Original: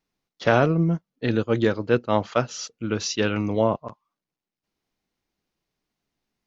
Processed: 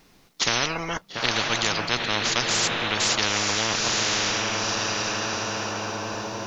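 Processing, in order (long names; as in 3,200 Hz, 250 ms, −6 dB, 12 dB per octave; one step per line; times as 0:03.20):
0:00.96–0:01.59: transient designer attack +4 dB, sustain −2 dB
feedback delay with all-pass diffusion 933 ms, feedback 41%, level −12 dB
every bin compressed towards the loudest bin 10 to 1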